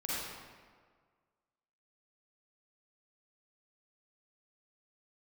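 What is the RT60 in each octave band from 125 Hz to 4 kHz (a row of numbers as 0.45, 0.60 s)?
1.7, 1.6, 1.7, 1.7, 1.4, 1.1 s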